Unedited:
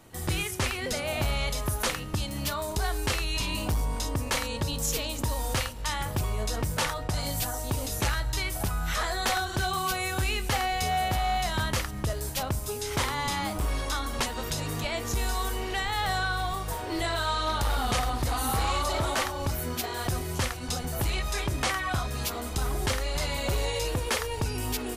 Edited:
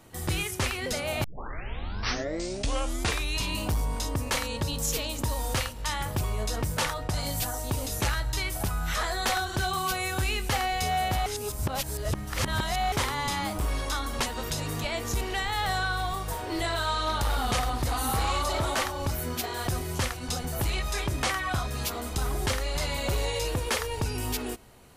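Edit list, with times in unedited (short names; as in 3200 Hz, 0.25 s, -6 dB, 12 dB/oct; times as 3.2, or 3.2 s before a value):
1.24 tape start 2.13 s
11.26–12.92 reverse
15.21–15.61 cut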